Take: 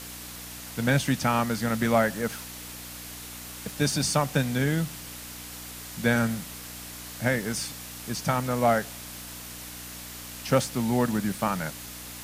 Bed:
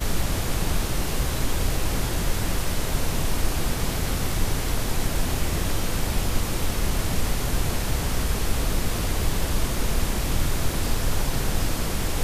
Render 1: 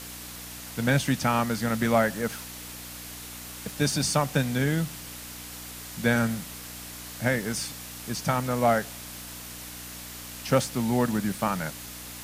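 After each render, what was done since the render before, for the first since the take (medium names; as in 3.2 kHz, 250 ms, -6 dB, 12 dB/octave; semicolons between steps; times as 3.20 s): no audible change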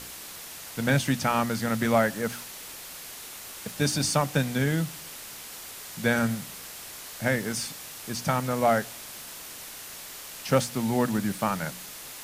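de-hum 60 Hz, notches 5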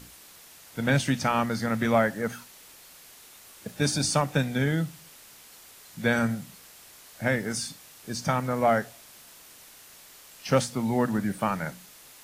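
noise print and reduce 9 dB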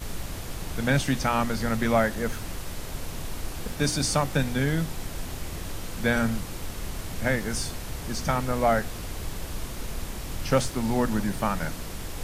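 add bed -10 dB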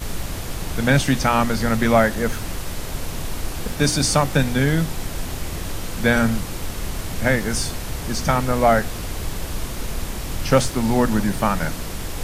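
trim +6.5 dB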